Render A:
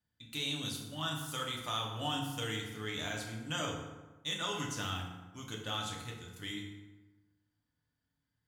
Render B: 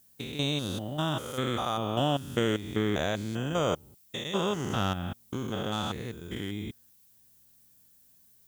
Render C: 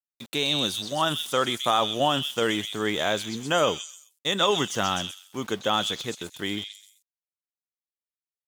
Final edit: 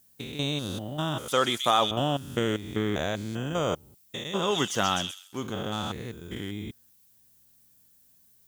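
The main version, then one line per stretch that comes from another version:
B
0:01.28–0:01.91: punch in from C
0:04.51–0:05.43: punch in from C, crossfade 0.24 s
not used: A

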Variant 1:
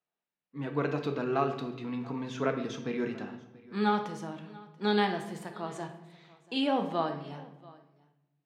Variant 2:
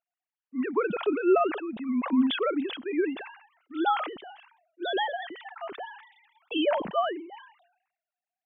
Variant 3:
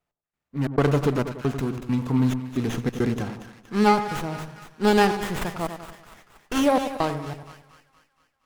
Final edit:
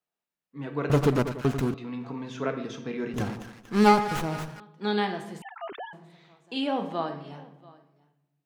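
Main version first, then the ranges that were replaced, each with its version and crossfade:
1
0:00.90–0:01.74: punch in from 3
0:03.14–0:04.60: punch in from 3
0:05.42–0:05.93: punch in from 2

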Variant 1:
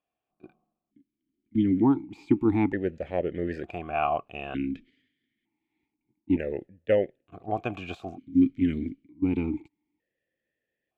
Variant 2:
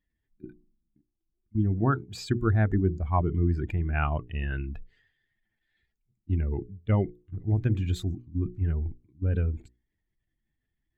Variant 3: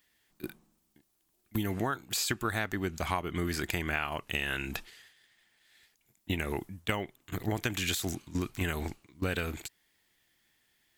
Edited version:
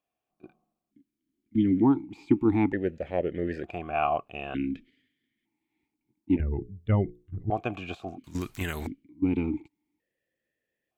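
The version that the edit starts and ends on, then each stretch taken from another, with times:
1
0:06.40–0:07.50: punch in from 2
0:08.24–0:08.87: punch in from 3

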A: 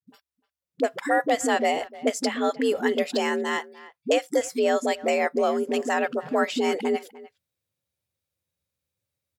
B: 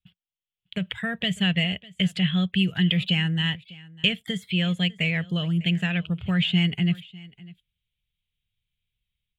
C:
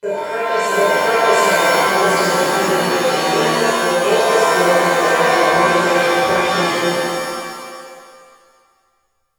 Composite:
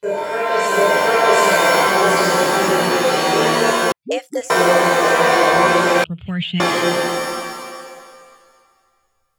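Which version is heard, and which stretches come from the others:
C
0:03.92–0:04.50: punch in from A
0:06.04–0:06.60: punch in from B

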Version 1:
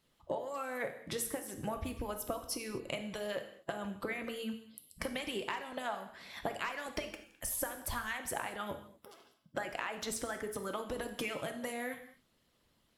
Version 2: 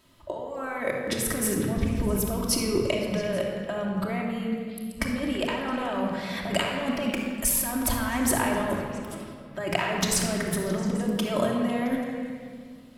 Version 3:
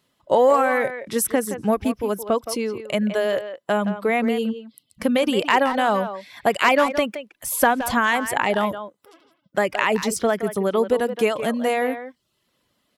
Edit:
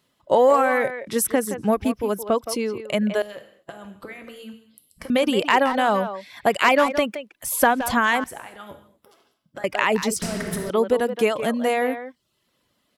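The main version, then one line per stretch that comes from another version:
3
0:03.22–0:05.10: punch in from 1
0:08.24–0:09.64: punch in from 1
0:10.22–0:10.70: punch in from 2

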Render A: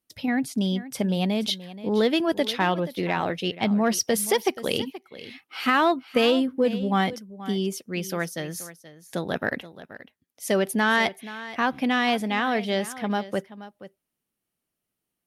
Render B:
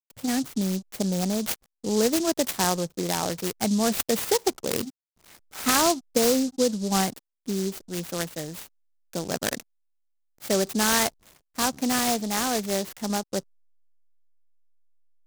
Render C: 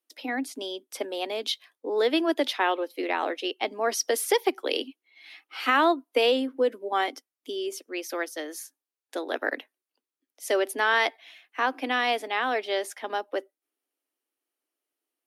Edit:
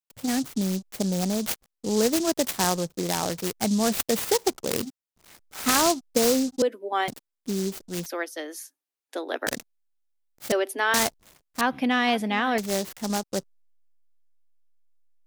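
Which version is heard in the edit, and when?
B
0:06.62–0:07.08: punch in from C
0:08.06–0:09.47: punch in from C
0:10.52–0:10.94: punch in from C
0:11.61–0:12.58: punch in from A

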